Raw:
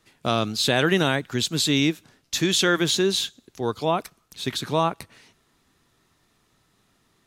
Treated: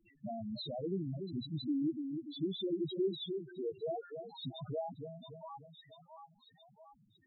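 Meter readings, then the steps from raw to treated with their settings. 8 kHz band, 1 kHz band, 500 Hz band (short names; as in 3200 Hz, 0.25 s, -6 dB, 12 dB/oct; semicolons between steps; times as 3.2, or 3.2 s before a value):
under -40 dB, -20.5 dB, -13.5 dB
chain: high shelf 7400 Hz -11 dB; vibrato 2.4 Hz 5.8 cents; dynamic EQ 1400 Hz, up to -5 dB, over -38 dBFS, Q 2.1; compressor 2.5:1, threshold -42 dBFS, peak gain reduction 16.5 dB; on a send: split-band echo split 680 Hz, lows 0.293 s, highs 0.68 s, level -6 dB; on the sum: loudest bins only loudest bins 2; gain +5.5 dB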